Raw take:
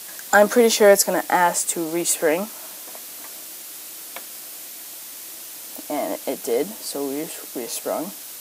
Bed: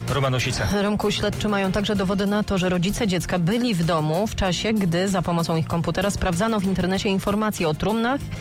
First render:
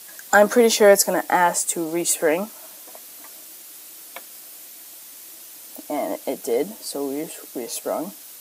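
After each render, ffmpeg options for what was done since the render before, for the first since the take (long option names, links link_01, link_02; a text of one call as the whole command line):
ffmpeg -i in.wav -af "afftdn=noise_reduction=6:noise_floor=-37" out.wav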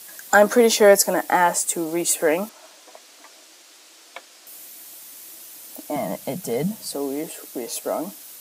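ffmpeg -i in.wav -filter_complex "[0:a]asettb=1/sr,asplit=3[link_01][link_02][link_03];[link_01]atrim=end=2.494[link_04];[link_02]atrim=start=2.49:end=4.47,asetpts=PTS-STARTPTS,afade=type=in:duration=0.004:curve=qsin,afade=type=out:start_time=1.976:duration=0.004:curve=qsin,acrossover=split=250 7400:gain=0.0631 1 0.0891[link_05][link_06][link_07];[link_05][link_06][link_07]amix=inputs=3:normalize=0[link_08];[link_03]atrim=start=4.466[link_09];[link_04][link_08]acrossfade=duration=0.004:curve1=hsin:curve2=qsin[link_10];[link_10][link_09]acrossfade=duration=0.004:curve1=qsin:curve2=hsin,asettb=1/sr,asplit=3[link_11][link_12][link_13];[link_11]atrim=end=5.964[link_14];[link_12]atrim=start=5.96:end=6.94,asetpts=PTS-STARTPTS,afade=type=in:duration=0.004:curve=qsin,afade=type=out:start_time=0.976:duration=0.004:curve=qsin,lowshelf=frequency=230:width_type=q:width=3:gain=11.5[link_15];[link_13]atrim=start=6.936[link_16];[link_14][link_15]acrossfade=duration=0.004:curve1=hsin:curve2=qsin[link_17];[link_17][link_16]acrossfade=duration=0.004:curve1=qsin:curve2=hsin" out.wav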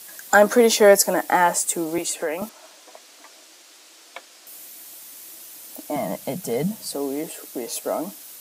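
ffmpeg -i in.wav -filter_complex "[0:a]asettb=1/sr,asplit=3[link_01][link_02][link_03];[link_01]atrim=end=1.984[link_04];[link_02]atrim=start=1.98:end=2.42,asetpts=PTS-STARTPTS,afade=type=in:duration=0.004:curve=qsin,afade=type=out:start_time=0.436:duration=0.004:curve=qsin,acrossover=split=430|7800[link_05][link_06][link_07];[link_05]acompressor=threshold=-36dB:ratio=4[link_08];[link_06]acompressor=threshold=-25dB:ratio=4[link_09];[link_07]acompressor=threshold=-37dB:ratio=4[link_10];[link_08][link_09][link_10]amix=inputs=3:normalize=0[link_11];[link_03]atrim=start=2.416[link_12];[link_04][link_11]acrossfade=duration=0.004:curve1=hsin:curve2=qsin[link_13];[link_13][link_12]acrossfade=duration=0.004:curve1=qsin:curve2=hsin" out.wav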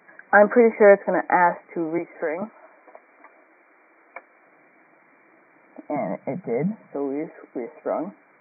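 ffmpeg -i in.wav -af "afftfilt=real='re*between(b*sr/4096,120,2400)':imag='im*between(b*sr/4096,120,2400)':win_size=4096:overlap=0.75" out.wav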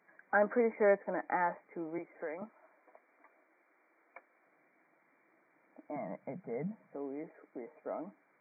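ffmpeg -i in.wav -af "volume=-14.5dB" out.wav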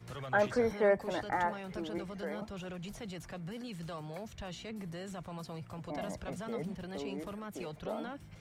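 ffmpeg -i in.wav -i bed.wav -filter_complex "[1:a]volume=-21.5dB[link_01];[0:a][link_01]amix=inputs=2:normalize=0" out.wav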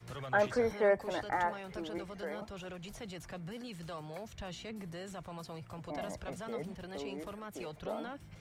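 ffmpeg -i in.wav -af "adynamicequalizer=threshold=0.00316:dfrequency=190:dqfactor=1.2:tfrequency=190:tqfactor=1.2:attack=5:release=100:ratio=0.375:range=2.5:mode=cutabove:tftype=bell" out.wav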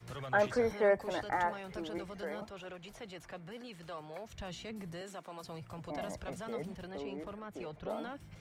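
ffmpeg -i in.wav -filter_complex "[0:a]asettb=1/sr,asplit=3[link_01][link_02][link_03];[link_01]atrim=end=2.494[link_04];[link_02]atrim=start=2.49:end=4.3,asetpts=PTS-STARTPTS,afade=type=in:duration=0.004:curve=qsin,afade=type=out:start_time=1.806:duration=0.004:curve=qsin,bass=frequency=250:gain=-8,treble=frequency=4000:gain=-6[link_05];[link_03]atrim=start=4.296[link_06];[link_04][link_05]acrossfade=duration=0.004:curve1=hsin:curve2=qsin[link_07];[link_07][link_06]acrossfade=duration=0.004:curve1=qsin:curve2=hsin,asettb=1/sr,asplit=3[link_08][link_09][link_10];[link_08]atrim=end=5.014[link_11];[link_09]atrim=start=5.01:end=5.44,asetpts=PTS-STARTPTS,afade=type=in:duration=0.004:curve=qsin,afade=type=out:start_time=0.426:duration=0.004:curve=qsin,highpass=frequency=220:width=0.5412,highpass=frequency=220:width=1.3066[link_12];[link_10]atrim=start=5.436[link_13];[link_11][link_12]acrossfade=duration=0.004:curve1=hsin:curve2=qsin[link_14];[link_14][link_13]acrossfade=duration=0.004:curve1=qsin:curve2=hsin,asettb=1/sr,asplit=3[link_15][link_16][link_17];[link_15]atrim=end=6.884[link_18];[link_16]atrim=start=6.88:end=7.9,asetpts=PTS-STARTPTS,afade=type=in:duration=0.004:curve=qsin,afade=type=out:start_time=1.016:duration=0.004:curve=qsin,lowpass=frequency=2400:poles=1[link_19];[link_17]atrim=start=7.896[link_20];[link_18][link_19]acrossfade=duration=0.004:curve1=hsin:curve2=qsin[link_21];[link_21][link_20]acrossfade=duration=0.004:curve1=qsin:curve2=hsin" out.wav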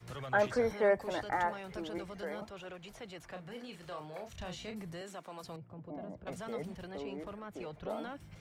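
ffmpeg -i in.wav -filter_complex "[0:a]asettb=1/sr,asplit=3[link_01][link_02][link_03];[link_01]atrim=end=3.304[link_04];[link_02]atrim=start=3.3:end=4.79,asetpts=PTS-STARTPTS,afade=type=in:duration=0.004:curve=qsin,afade=type=out:start_time=1.486:duration=0.004:curve=qsin,asplit=2[link_05][link_06];[link_06]adelay=33,volume=-6.5dB[link_07];[link_05][link_07]amix=inputs=2:normalize=0,atrim=end_sample=65709[link_08];[link_03]atrim=start=4.786[link_09];[link_04][link_08]acrossfade=duration=0.004:curve1=hsin:curve2=qsin[link_10];[link_10][link_09]acrossfade=duration=0.004:curve1=qsin:curve2=hsin,asettb=1/sr,asplit=3[link_11][link_12][link_13];[link_11]atrim=end=5.564[link_14];[link_12]atrim=start=5.56:end=6.27,asetpts=PTS-STARTPTS,afade=type=in:duration=0.004:curve=qsin,afade=type=out:start_time=0.706:duration=0.004:curve=qsin,bandpass=frequency=250:width_type=q:width=0.77[link_15];[link_13]atrim=start=6.266[link_16];[link_14][link_15]acrossfade=duration=0.004:curve1=hsin:curve2=qsin[link_17];[link_17][link_16]acrossfade=duration=0.004:curve1=qsin:curve2=hsin" out.wav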